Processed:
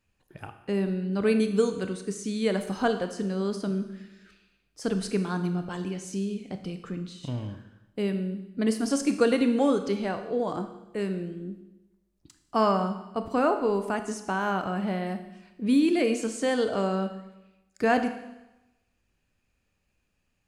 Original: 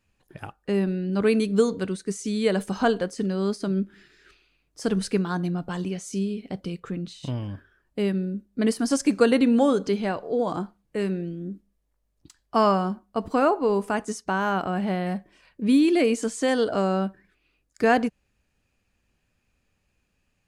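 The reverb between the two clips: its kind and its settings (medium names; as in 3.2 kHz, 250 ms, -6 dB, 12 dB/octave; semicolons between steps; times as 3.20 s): Schroeder reverb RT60 0.98 s, combs from 25 ms, DRR 8 dB; trim -3.5 dB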